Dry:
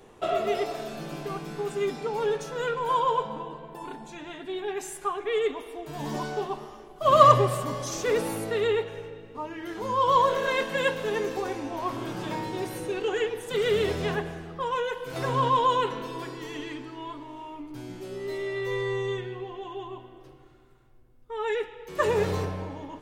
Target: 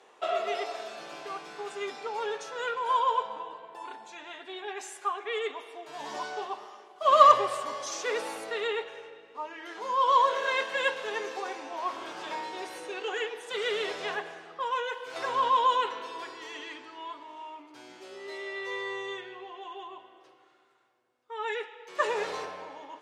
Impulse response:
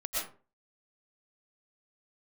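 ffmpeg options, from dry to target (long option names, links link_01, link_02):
-af "highpass=640,lowpass=7100"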